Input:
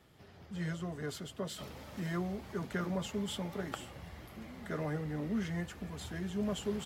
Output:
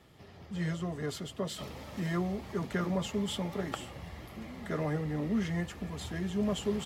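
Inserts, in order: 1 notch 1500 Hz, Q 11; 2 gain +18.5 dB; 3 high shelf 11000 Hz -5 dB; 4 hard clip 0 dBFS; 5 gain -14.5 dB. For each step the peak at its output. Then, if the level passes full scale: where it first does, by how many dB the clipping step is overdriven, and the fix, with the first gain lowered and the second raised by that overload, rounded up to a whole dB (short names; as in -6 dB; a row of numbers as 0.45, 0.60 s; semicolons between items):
-24.0, -5.5, -5.5, -5.5, -20.0 dBFS; no overload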